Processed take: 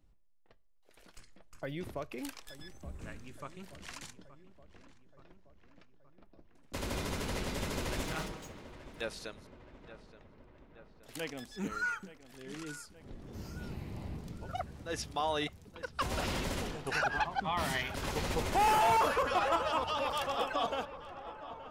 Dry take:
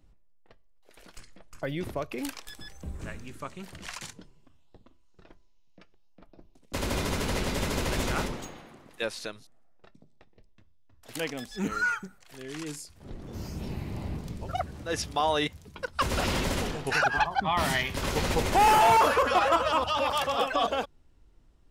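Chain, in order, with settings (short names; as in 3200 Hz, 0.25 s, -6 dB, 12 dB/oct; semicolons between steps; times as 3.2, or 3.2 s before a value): 8.03–9.01 minimum comb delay 6.3 ms; darkening echo 0.874 s, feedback 64%, low-pass 2600 Hz, level -15 dB; gain -7 dB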